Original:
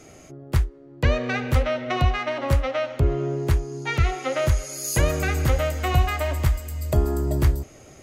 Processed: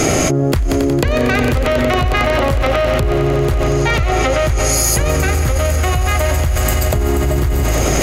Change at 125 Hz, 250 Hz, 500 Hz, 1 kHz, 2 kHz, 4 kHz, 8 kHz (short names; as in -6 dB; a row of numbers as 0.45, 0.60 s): +7.0, +11.5, +10.5, +10.0, +10.0, +11.0, +14.5 dB